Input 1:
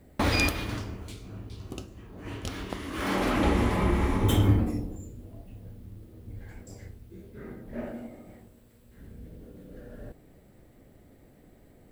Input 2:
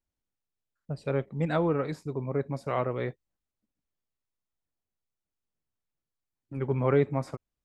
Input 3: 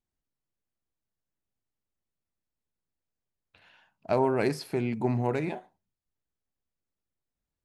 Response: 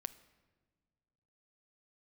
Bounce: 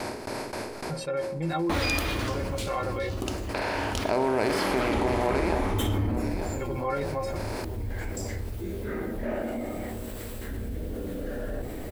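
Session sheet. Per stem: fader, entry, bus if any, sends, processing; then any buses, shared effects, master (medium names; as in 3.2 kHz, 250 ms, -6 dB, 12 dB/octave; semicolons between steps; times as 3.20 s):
-6.0 dB, 1.50 s, no send, no echo send, none
+1.5 dB, 0.00 s, no send, no echo send, inharmonic resonator 160 Hz, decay 0.3 s, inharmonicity 0.03
-4.0 dB, 0.00 s, no send, echo send -18.5 dB, spectral levelling over time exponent 0.4; gate with hold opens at -39 dBFS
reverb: none
echo: feedback delay 890 ms, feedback 29%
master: peaking EQ 150 Hz -10.5 dB 0.69 oct; hum notches 60/120/180/240/300/360/420/480/540 Hz; level flattener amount 70%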